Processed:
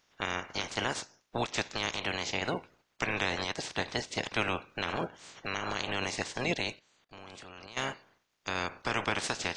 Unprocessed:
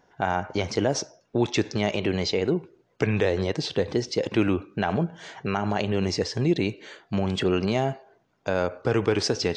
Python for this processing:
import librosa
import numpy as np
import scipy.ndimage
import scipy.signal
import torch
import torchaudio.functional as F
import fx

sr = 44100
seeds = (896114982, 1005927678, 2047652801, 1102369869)

y = fx.spec_clip(x, sr, under_db=26)
y = fx.level_steps(y, sr, step_db=20, at=(6.79, 7.77))
y = F.gain(torch.from_numpy(y), -8.5).numpy()